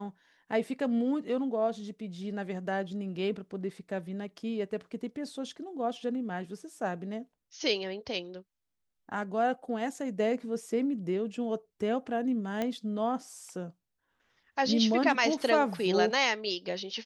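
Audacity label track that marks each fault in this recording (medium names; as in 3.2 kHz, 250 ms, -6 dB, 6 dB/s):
12.620000	12.620000	pop -18 dBFS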